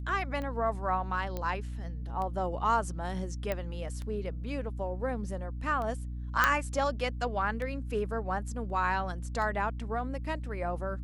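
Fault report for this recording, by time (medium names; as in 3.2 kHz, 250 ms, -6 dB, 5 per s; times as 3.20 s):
hum 60 Hz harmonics 5 -37 dBFS
tick 33 1/3 rpm -26 dBFS
1.37 s: pop -21 dBFS
3.52 s: pop -18 dBFS
6.44 s: pop -9 dBFS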